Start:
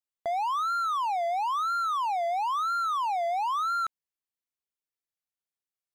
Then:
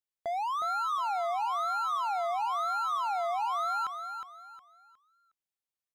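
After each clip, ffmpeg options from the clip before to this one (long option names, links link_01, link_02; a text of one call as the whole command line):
ffmpeg -i in.wav -af "aecho=1:1:362|724|1086|1448:0.422|0.127|0.038|0.0114,volume=-3.5dB" out.wav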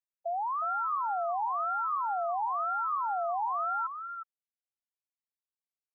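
ffmpeg -i in.wav -af "afftfilt=real='re*gte(hypot(re,im),0.0708)':imag='im*gte(hypot(re,im),0.0708)':win_size=1024:overlap=0.75" out.wav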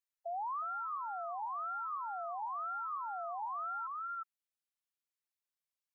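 ffmpeg -i in.wav -af "highpass=970,alimiter=level_in=10.5dB:limit=-24dB:level=0:latency=1:release=16,volume=-10.5dB" out.wav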